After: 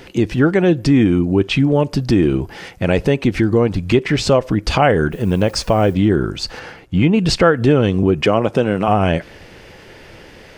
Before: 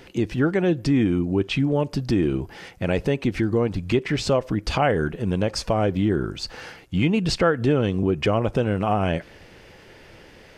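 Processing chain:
0:05.11–0:05.93: background noise blue −58 dBFS
0:06.59–0:07.19: high-shelf EQ 3,000 Hz −9 dB
0:08.21–0:08.88: high-pass filter 150 Hz 12 dB per octave
level +7 dB

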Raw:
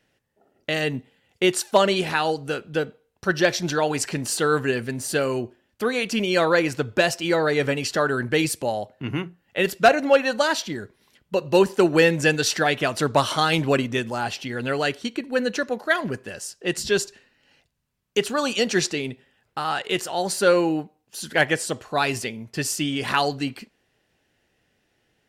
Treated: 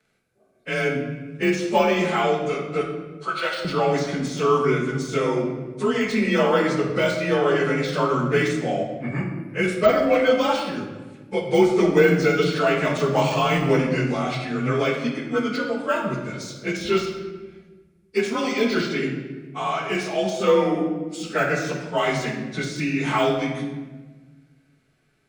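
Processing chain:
partials spread apart or drawn together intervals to 91%
0:02.81–0:03.65: high-pass filter 710 Hz 12 dB per octave
de-essing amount 90%
high-shelf EQ 10,000 Hz +9 dB
convolution reverb RT60 1.3 s, pre-delay 5 ms, DRR 0.5 dB

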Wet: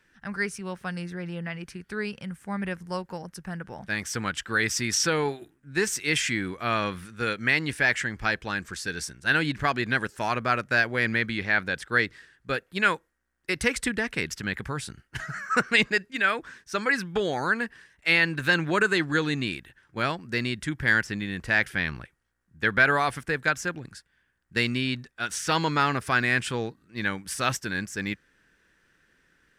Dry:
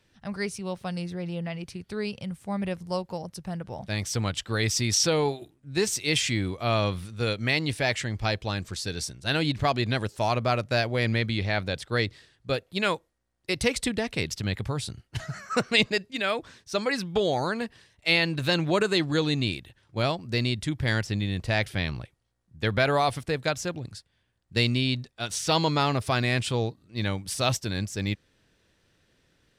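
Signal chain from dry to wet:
graphic EQ with 15 bands 100 Hz −11 dB, 630 Hz −6 dB, 1,600 Hz +11 dB, 4,000 Hz −6 dB

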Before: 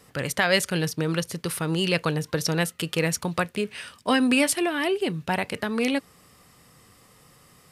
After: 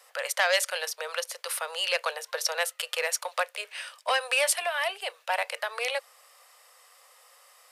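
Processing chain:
Butterworth high-pass 510 Hz 72 dB per octave
saturating transformer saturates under 2,400 Hz

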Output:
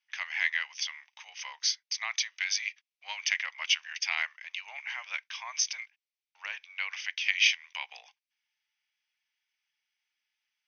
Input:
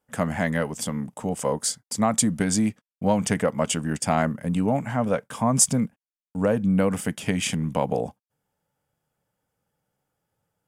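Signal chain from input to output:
Butterworth high-pass 1,000 Hz 36 dB per octave
de-essing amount 30%
linear-phase brick-wall low-pass 6,400 Hz
high shelf with overshoot 1,700 Hz +9 dB, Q 3
level −6.5 dB

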